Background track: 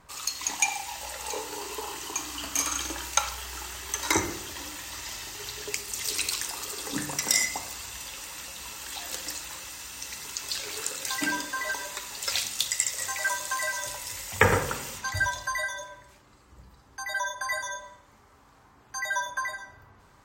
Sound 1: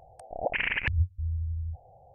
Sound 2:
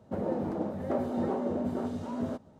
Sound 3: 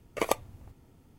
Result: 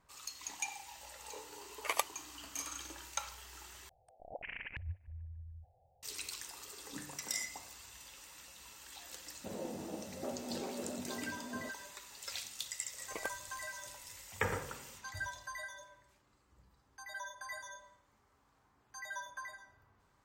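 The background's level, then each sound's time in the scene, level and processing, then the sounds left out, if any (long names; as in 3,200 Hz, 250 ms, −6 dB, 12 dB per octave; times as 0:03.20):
background track −14.5 dB
0:01.68: mix in 3 −0.5 dB + high-pass filter 1,100 Hz
0:03.89: overwrite with 1 −16.5 dB + feedback echo with a low-pass in the loop 149 ms, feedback 71%, low-pass 1,600 Hz, level −23.5 dB
0:09.33: mix in 2 −10.5 dB + low-shelf EQ 140 Hz −5.5 dB
0:12.94: mix in 3 −16 dB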